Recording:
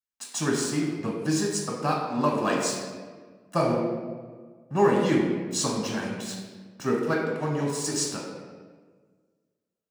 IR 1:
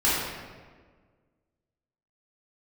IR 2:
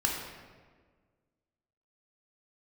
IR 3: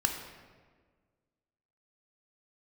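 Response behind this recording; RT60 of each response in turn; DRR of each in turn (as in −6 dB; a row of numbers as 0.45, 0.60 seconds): 2; 1.6, 1.6, 1.6 seconds; −10.5, −2.0, 3.0 decibels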